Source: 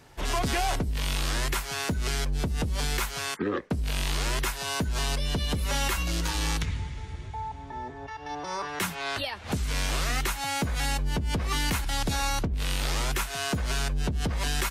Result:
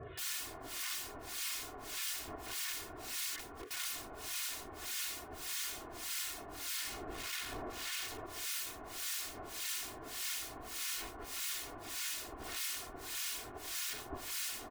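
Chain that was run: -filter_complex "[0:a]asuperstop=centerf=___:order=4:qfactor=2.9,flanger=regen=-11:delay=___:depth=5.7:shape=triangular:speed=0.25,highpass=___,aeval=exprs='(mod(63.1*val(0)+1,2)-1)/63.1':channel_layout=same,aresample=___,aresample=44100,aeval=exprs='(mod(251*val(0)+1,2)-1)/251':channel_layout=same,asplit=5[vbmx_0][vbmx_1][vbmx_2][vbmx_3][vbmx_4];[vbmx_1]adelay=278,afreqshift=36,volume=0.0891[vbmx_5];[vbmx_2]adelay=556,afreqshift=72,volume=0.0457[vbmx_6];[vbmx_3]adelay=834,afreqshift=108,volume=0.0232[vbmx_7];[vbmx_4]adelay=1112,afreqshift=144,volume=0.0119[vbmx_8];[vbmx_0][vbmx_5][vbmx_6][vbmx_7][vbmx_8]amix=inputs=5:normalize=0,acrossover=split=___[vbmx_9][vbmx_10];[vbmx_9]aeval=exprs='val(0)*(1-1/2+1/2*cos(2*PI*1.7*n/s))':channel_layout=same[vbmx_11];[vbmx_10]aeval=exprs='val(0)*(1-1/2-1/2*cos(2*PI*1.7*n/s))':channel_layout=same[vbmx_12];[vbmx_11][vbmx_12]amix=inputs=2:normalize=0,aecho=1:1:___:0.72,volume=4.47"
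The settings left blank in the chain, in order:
860, 1.6, 93, 8000, 1200, 2.8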